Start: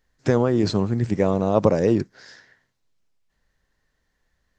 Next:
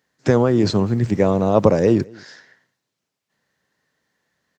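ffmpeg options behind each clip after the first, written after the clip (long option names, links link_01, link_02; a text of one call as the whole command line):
ffmpeg -i in.wav -filter_complex "[0:a]acrossover=split=110[link_01][link_02];[link_01]aeval=exprs='val(0)*gte(abs(val(0)),0.00447)':channel_layout=same[link_03];[link_03][link_02]amix=inputs=2:normalize=0,asplit=2[link_04][link_05];[link_05]adelay=209.9,volume=-26dB,highshelf=frequency=4000:gain=-4.72[link_06];[link_04][link_06]amix=inputs=2:normalize=0,volume=3.5dB" out.wav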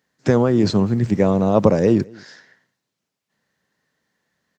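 ffmpeg -i in.wav -af "equalizer=frequency=200:width_type=o:width=0.66:gain=3.5,volume=-1dB" out.wav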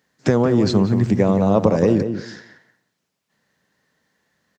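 ffmpeg -i in.wav -filter_complex "[0:a]acompressor=threshold=-20dB:ratio=2,asplit=2[link_01][link_02];[link_02]adelay=176,lowpass=frequency=1700:poles=1,volume=-8dB,asplit=2[link_03][link_04];[link_04]adelay=176,lowpass=frequency=1700:poles=1,volume=0.18,asplit=2[link_05][link_06];[link_06]adelay=176,lowpass=frequency=1700:poles=1,volume=0.18[link_07];[link_01][link_03][link_05][link_07]amix=inputs=4:normalize=0,volume=4dB" out.wav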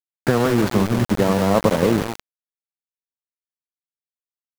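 ffmpeg -i in.wav -af "highshelf=frequency=2000:width_type=q:width=3:gain=-10.5,aeval=exprs='val(0)*gte(abs(val(0)),0.133)':channel_layout=same,volume=-1.5dB" out.wav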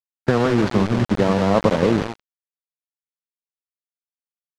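ffmpeg -i in.wav -af "agate=range=-21dB:threshold=-24dB:ratio=16:detection=peak,lowpass=5300" out.wav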